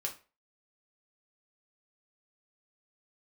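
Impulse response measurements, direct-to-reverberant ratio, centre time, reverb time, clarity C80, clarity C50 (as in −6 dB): 0.0 dB, 14 ms, 0.35 s, 18.5 dB, 12.0 dB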